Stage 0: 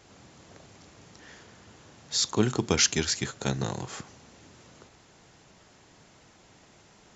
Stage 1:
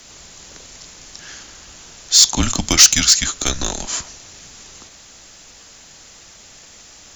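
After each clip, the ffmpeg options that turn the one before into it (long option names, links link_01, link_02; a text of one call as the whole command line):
ffmpeg -i in.wav -af "crystalizer=i=5.5:c=0,afreqshift=-140,acontrast=67,volume=-1dB" out.wav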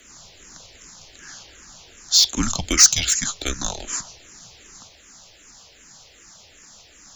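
ffmpeg -i in.wav -filter_complex "[0:a]asplit=2[link_01][link_02];[link_02]afreqshift=-2.6[link_03];[link_01][link_03]amix=inputs=2:normalize=1,volume=-2dB" out.wav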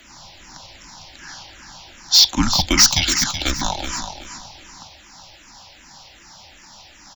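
ffmpeg -i in.wav -filter_complex "[0:a]asoftclip=type=hard:threshold=-8.5dB,superequalizer=7b=0.316:9b=2.24:15b=0.355:16b=0.355,asplit=2[link_01][link_02];[link_02]aecho=0:1:376|752|1128:0.355|0.0923|0.024[link_03];[link_01][link_03]amix=inputs=2:normalize=0,volume=4.5dB" out.wav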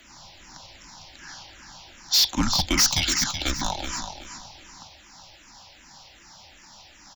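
ffmpeg -i in.wav -af "asoftclip=type=hard:threshold=-10.5dB,volume=-4.5dB" out.wav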